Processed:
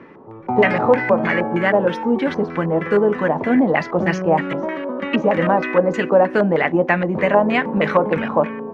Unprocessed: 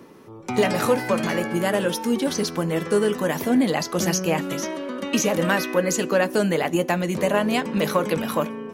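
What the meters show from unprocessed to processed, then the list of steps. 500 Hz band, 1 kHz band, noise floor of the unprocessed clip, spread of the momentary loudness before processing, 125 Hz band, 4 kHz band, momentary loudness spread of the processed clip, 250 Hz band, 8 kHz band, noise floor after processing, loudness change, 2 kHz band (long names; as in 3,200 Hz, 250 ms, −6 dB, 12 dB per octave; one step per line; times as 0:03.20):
+5.5 dB, +7.0 dB, −41 dBFS, 5 LU, +3.0 dB, −4.5 dB, 6 LU, +3.5 dB, below −20 dB, −37 dBFS, +4.5 dB, +6.0 dB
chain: auto-filter low-pass square 3.2 Hz 830–2,000 Hz
level +3 dB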